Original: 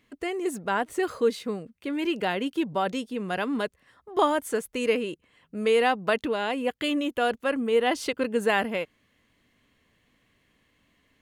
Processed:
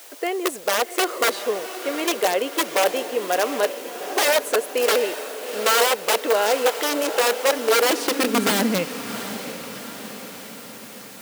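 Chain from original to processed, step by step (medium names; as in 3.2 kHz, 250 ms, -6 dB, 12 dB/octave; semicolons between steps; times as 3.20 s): in parallel at -10 dB: word length cut 6-bit, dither triangular; on the sum: integer overflow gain 17 dB; echo that smears into a reverb 742 ms, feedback 57%, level -10.5 dB; high-pass sweep 510 Hz -> 130 Hz, 7.66–9.12 s; trim +2 dB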